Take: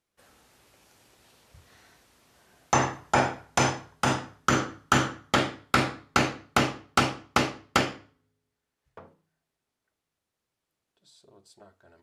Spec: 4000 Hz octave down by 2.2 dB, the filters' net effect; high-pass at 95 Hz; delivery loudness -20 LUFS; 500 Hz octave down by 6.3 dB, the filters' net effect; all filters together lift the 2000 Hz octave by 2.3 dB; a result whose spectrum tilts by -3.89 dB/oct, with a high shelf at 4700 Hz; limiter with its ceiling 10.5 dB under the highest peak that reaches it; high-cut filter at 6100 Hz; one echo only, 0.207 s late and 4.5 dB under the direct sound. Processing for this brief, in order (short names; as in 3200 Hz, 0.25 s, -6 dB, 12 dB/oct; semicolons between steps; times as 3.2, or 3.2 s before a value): HPF 95 Hz; LPF 6100 Hz; bell 500 Hz -9 dB; bell 2000 Hz +4.5 dB; bell 4000 Hz -6.5 dB; high shelf 4700 Hz +4.5 dB; limiter -17 dBFS; echo 0.207 s -4.5 dB; gain +10 dB